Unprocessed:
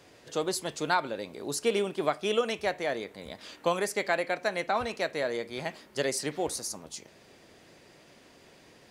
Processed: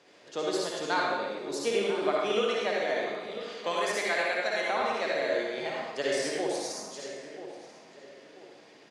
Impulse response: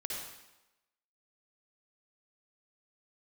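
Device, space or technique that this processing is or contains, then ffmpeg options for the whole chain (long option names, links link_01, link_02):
supermarket ceiling speaker: -filter_complex "[0:a]asettb=1/sr,asplit=3[link_01][link_02][link_03];[link_01]atrim=end=3.574[link_04];[link_02]atrim=start=3.57:end=4.65,asetpts=PTS-STARTPTS,afade=type=in:duration=0.004:curve=qsin,afade=type=out:start_time=1.076:duration=0.004:curve=qsin,tiltshelf=frequency=1300:gain=-4[link_05];[link_03]atrim=start=4.646[link_06];[link_04][link_05]acrossfade=duration=0.004:curve1=hsin:curve2=qsin[link_07];[link_07][link_06]acrossfade=duration=0.004:curve1=qsin:curve2=hsin,highpass=230,lowpass=6500,asplit=2[link_08][link_09];[link_09]adelay=988,lowpass=frequency=2200:poles=1,volume=-12dB,asplit=2[link_10][link_11];[link_11]adelay=988,lowpass=frequency=2200:poles=1,volume=0.34,asplit=2[link_12][link_13];[link_13]adelay=988,lowpass=frequency=2200:poles=1,volume=0.34[link_14];[link_08][link_10][link_12][link_14]amix=inputs=4:normalize=0[link_15];[1:a]atrim=start_sample=2205[link_16];[link_15][link_16]afir=irnorm=-1:irlink=0"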